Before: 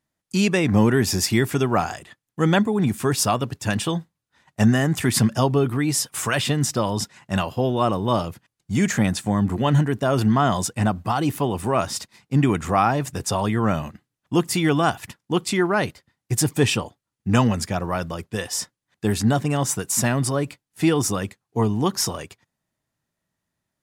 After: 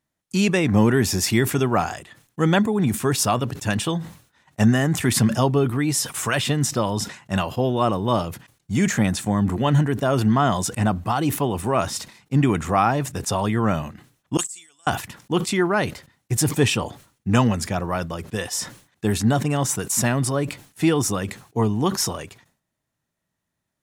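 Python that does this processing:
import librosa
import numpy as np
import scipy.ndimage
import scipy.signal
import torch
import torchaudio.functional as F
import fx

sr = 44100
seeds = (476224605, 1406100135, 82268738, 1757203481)

y = fx.bandpass_q(x, sr, hz=7800.0, q=11.0, at=(14.37, 14.87))
y = fx.notch(y, sr, hz=4800.0, q=19.0)
y = fx.sustainer(y, sr, db_per_s=130.0)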